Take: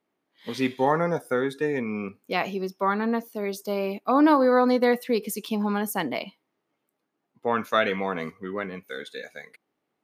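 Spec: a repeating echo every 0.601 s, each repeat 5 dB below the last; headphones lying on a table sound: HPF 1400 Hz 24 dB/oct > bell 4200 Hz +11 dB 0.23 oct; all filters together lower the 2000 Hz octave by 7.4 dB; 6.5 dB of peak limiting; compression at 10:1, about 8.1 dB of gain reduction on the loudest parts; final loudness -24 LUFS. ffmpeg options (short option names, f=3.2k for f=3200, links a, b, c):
-af "equalizer=f=2k:t=o:g=-8.5,acompressor=threshold=-23dB:ratio=10,alimiter=limit=-20dB:level=0:latency=1,highpass=f=1.4k:w=0.5412,highpass=f=1.4k:w=1.3066,equalizer=f=4.2k:t=o:w=0.23:g=11,aecho=1:1:601|1202|1803|2404|3005|3606|4207:0.562|0.315|0.176|0.0988|0.0553|0.031|0.0173,volume=16dB"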